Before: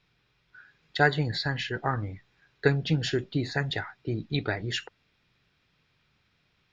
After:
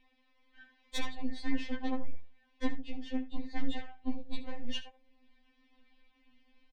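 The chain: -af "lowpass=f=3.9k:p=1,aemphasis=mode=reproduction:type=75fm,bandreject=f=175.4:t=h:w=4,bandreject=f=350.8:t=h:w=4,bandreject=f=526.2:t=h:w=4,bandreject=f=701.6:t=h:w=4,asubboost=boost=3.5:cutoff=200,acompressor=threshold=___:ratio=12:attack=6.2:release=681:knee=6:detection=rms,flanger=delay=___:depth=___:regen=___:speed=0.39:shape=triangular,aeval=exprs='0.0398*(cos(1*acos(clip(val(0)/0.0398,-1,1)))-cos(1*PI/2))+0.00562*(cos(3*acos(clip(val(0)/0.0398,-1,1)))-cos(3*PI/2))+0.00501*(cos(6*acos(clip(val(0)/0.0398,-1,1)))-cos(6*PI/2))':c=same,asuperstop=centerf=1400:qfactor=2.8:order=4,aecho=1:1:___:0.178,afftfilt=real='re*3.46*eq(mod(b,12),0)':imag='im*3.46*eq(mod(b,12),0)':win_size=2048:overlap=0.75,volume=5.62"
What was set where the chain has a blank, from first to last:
0.0224, 7.3, 8.9, 50, 73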